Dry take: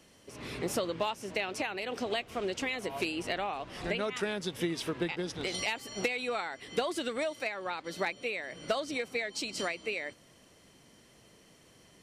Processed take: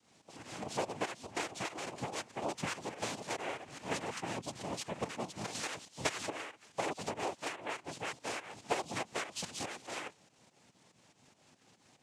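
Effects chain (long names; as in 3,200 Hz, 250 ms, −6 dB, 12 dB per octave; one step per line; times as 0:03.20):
fake sidechain pumping 143 BPM, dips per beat 2, −12 dB, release 173 ms
cochlear-implant simulation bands 4
0:05.85–0:07.15: multiband upward and downward expander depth 70%
level −3.5 dB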